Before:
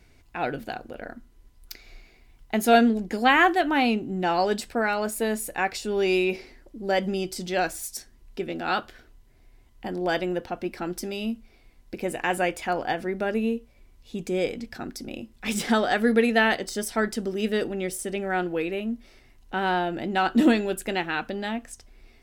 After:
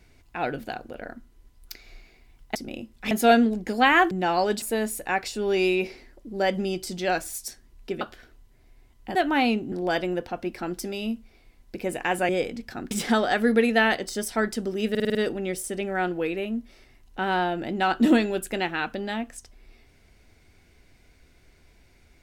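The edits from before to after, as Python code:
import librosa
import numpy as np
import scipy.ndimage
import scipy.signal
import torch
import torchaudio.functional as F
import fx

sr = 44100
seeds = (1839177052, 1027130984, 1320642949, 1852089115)

y = fx.edit(x, sr, fx.move(start_s=3.55, length_s=0.57, to_s=9.91),
    fx.cut(start_s=4.63, length_s=0.48),
    fx.cut(start_s=8.5, length_s=0.27),
    fx.cut(start_s=12.48, length_s=1.85),
    fx.move(start_s=14.95, length_s=0.56, to_s=2.55),
    fx.stutter(start_s=17.5, slice_s=0.05, count=6), tone=tone)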